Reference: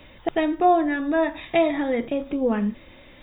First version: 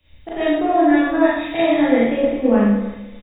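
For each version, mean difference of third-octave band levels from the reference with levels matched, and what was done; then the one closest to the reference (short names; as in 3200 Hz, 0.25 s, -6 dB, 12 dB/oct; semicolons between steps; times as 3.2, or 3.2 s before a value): 5.5 dB: limiter -15 dBFS, peak gain reduction 7 dB; on a send: feedback echo 0.303 s, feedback 39%, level -13 dB; on the sum: Schroeder reverb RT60 0.93 s, combs from 27 ms, DRR -6.5 dB; three-band expander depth 70%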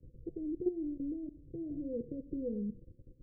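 11.5 dB: resonant low shelf 170 Hz +6 dB, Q 1.5; de-hum 95.56 Hz, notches 14; level quantiser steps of 15 dB; rippled Chebyshev low-pass 510 Hz, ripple 3 dB; gain -3.5 dB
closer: first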